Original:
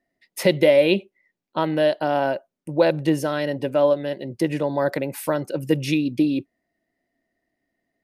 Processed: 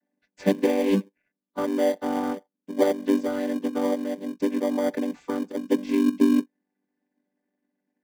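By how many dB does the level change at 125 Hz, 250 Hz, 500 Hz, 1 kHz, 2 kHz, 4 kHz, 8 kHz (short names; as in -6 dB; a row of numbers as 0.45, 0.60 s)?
under -10 dB, +0.5 dB, -6.0 dB, -5.5 dB, -9.0 dB, -9.5 dB, -5.0 dB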